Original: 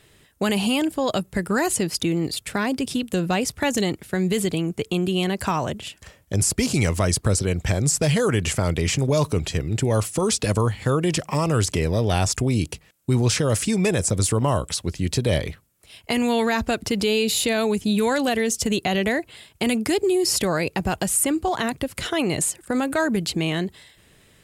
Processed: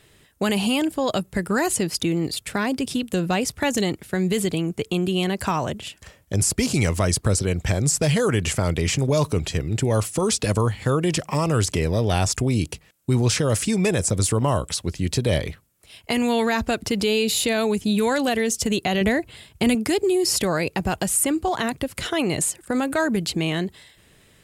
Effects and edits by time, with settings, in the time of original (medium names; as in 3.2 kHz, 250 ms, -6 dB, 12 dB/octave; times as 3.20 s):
19.01–19.75 s: bass shelf 170 Hz +11 dB